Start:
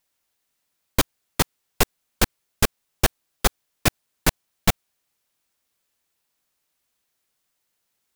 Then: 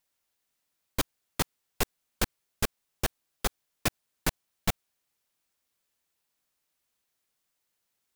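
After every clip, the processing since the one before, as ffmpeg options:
-af "alimiter=limit=0.335:level=0:latency=1:release=44,volume=0.596"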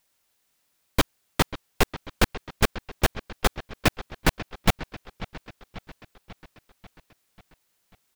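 -filter_complex "[0:a]acrossover=split=4400[s0][s1];[s0]aecho=1:1:541|1082|1623|2164|2705|3246:0.178|0.105|0.0619|0.0365|0.0215|0.0127[s2];[s1]asoftclip=type=tanh:threshold=0.015[s3];[s2][s3]amix=inputs=2:normalize=0,volume=2.66"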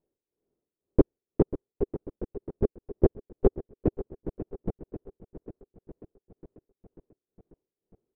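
-af "lowpass=f=400:t=q:w=3.6,tremolo=f=2:d=0.86"

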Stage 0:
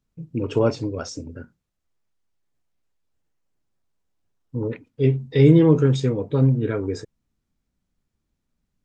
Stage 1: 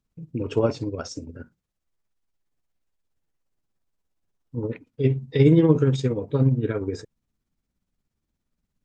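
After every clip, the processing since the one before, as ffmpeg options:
-af "tremolo=f=17:d=0.52"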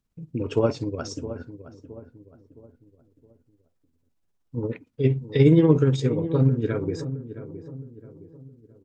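-filter_complex "[0:a]asplit=2[s0][s1];[s1]adelay=666,lowpass=f=980:p=1,volume=0.251,asplit=2[s2][s3];[s3]adelay=666,lowpass=f=980:p=1,volume=0.44,asplit=2[s4][s5];[s5]adelay=666,lowpass=f=980:p=1,volume=0.44,asplit=2[s6][s7];[s7]adelay=666,lowpass=f=980:p=1,volume=0.44[s8];[s0][s2][s4][s6][s8]amix=inputs=5:normalize=0"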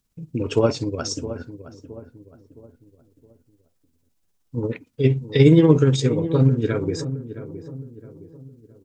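-af "highshelf=f=3400:g=9,volume=1.41"

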